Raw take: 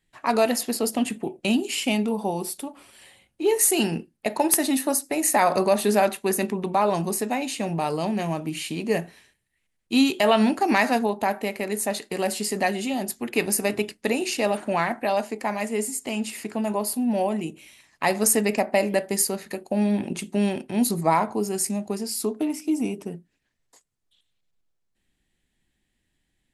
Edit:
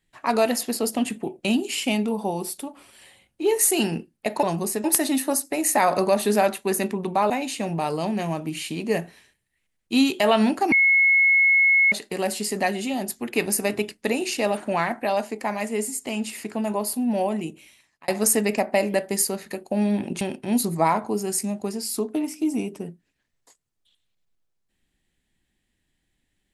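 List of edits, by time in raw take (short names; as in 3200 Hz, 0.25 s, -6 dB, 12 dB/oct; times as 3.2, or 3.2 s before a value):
6.89–7.3 move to 4.43
10.72–11.92 bleep 2180 Hz -14 dBFS
17.33–18.08 fade out equal-power
20.21–20.47 cut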